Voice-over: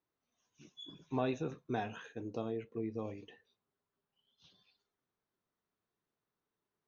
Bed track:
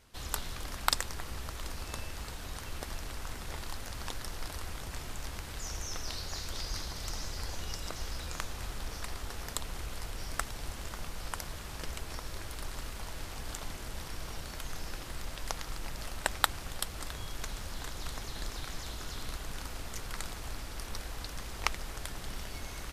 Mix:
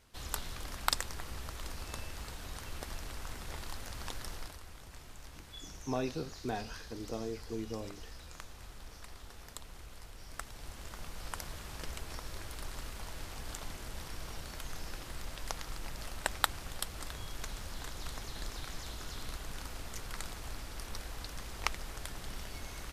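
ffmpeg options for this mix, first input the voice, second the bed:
-filter_complex "[0:a]adelay=4750,volume=0.944[s0];[1:a]volume=1.88,afade=t=out:st=4.33:d=0.26:silence=0.398107,afade=t=in:st=10.22:d=1.2:silence=0.398107[s1];[s0][s1]amix=inputs=2:normalize=0"

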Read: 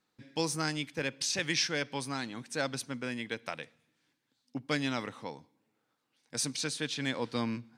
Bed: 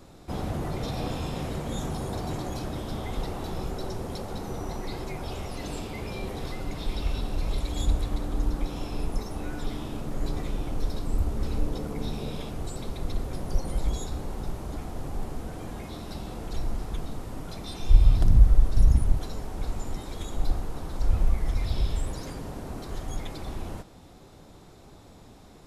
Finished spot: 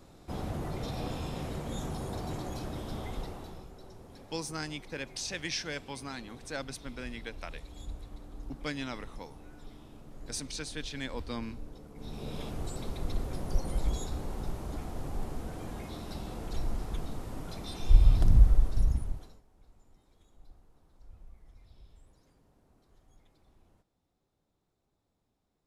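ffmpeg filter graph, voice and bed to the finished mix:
-filter_complex "[0:a]adelay=3950,volume=0.562[s0];[1:a]volume=2.82,afade=t=out:st=3.04:d=0.63:silence=0.251189,afade=t=in:st=11.94:d=0.51:silence=0.199526,afade=t=out:st=18.38:d=1.04:silence=0.0473151[s1];[s0][s1]amix=inputs=2:normalize=0"

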